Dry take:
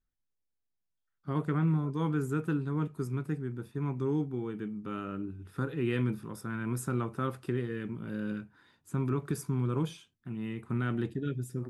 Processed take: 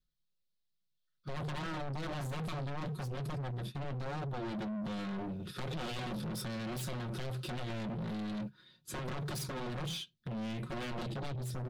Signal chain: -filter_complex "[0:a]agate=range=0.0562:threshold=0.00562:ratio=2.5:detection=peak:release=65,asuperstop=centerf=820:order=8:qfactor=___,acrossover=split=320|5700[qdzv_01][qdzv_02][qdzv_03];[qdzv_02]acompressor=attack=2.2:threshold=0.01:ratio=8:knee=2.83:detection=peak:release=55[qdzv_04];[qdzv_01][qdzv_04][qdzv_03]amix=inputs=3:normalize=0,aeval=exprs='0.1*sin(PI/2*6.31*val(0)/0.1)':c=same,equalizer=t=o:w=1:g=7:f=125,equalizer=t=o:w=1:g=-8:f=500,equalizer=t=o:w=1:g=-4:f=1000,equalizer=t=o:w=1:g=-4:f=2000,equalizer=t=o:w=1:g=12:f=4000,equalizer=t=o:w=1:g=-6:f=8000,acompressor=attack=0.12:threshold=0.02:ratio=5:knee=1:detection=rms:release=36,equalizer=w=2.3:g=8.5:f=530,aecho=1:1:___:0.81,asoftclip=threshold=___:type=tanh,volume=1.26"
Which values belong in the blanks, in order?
4.5, 5.5, 0.0126